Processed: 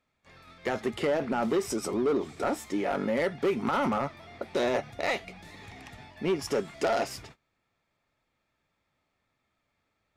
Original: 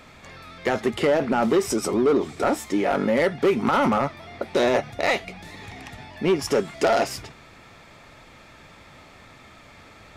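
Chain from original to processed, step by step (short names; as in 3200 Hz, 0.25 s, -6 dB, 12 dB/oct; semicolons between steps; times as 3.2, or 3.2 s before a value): gate -42 dBFS, range -23 dB; gain -7 dB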